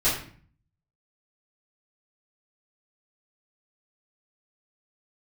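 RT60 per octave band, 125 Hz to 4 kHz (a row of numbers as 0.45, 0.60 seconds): 0.85, 0.70, 0.50, 0.45, 0.50, 0.40 seconds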